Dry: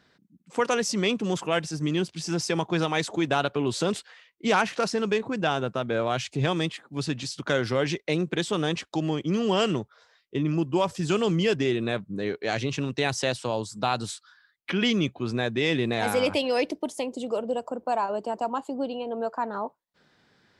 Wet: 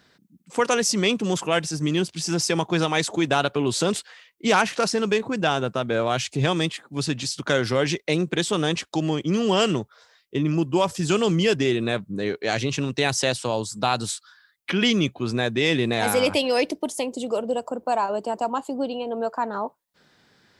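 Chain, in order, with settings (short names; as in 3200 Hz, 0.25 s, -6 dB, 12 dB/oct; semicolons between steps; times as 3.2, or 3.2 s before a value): high shelf 6200 Hz +8 dB; gain +3 dB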